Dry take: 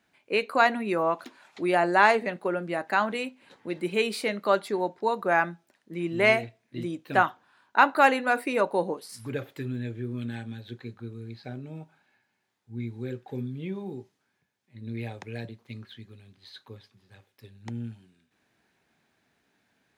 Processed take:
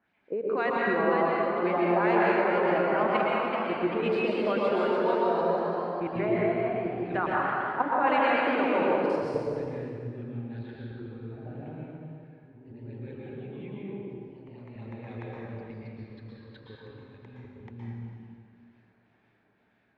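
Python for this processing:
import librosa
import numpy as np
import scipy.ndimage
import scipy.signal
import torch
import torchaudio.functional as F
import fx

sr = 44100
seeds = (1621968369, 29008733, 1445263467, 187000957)

y = fx.level_steps(x, sr, step_db=15)
y = fx.filter_lfo_lowpass(y, sr, shape='sine', hz=2.0, low_hz=480.0, high_hz=2800.0, q=1.2)
y = fx.echo_pitch(y, sr, ms=558, semitones=1, count=3, db_per_echo=-6.0)
y = fx.rev_plate(y, sr, seeds[0], rt60_s=2.2, hf_ratio=0.8, predelay_ms=105, drr_db=-5.0)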